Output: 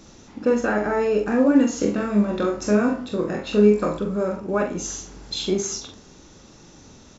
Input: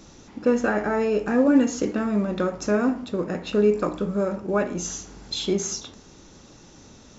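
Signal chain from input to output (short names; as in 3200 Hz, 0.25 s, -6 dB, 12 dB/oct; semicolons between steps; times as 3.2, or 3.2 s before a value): doubler 43 ms -6 dB; 1.78–3.99 flutter echo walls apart 4.2 m, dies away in 0.28 s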